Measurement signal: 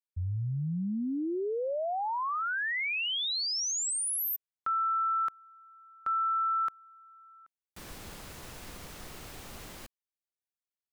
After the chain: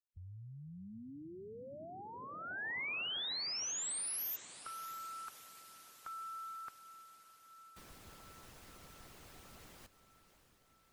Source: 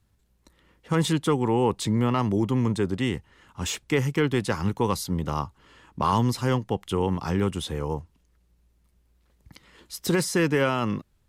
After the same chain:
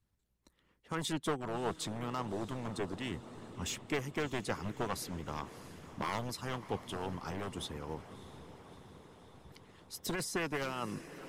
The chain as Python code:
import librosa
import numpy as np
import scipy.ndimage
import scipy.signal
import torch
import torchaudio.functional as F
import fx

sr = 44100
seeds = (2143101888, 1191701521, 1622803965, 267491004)

y = np.minimum(x, 2.0 * 10.0 ** (-18.5 / 20.0) - x)
y = fx.echo_diffused(y, sr, ms=638, feedback_pct=66, wet_db=-13)
y = fx.hpss(y, sr, part='harmonic', gain_db=-10)
y = F.gain(torch.from_numpy(y), -8.0).numpy()